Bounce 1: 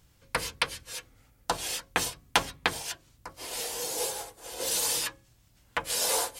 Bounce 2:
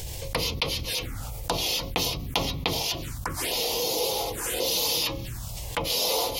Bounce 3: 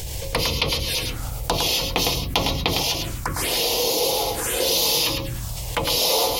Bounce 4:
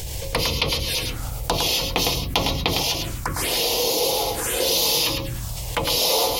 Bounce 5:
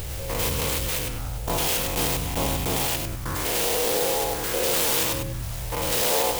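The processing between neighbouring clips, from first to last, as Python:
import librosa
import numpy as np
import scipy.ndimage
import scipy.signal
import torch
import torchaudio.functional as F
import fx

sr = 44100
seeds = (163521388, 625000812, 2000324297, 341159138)

y1 = fx.env_phaser(x, sr, low_hz=200.0, high_hz=1600.0, full_db=-35.5)
y1 = fx.env_flatten(y1, sr, amount_pct=70)
y2 = y1 + 10.0 ** (-5.5 / 20.0) * np.pad(y1, (int(107 * sr / 1000.0), 0))[:len(y1)]
y2 = F.gain(torch.from_numpy(y2), 4.5).numpy()
y3 = y2
y4 = fx.spec_steps(y3, sr, hold_ms=100)
y4 = fx.clock_jitter(y4, sr, seeds[0], jitter_ms=0.066)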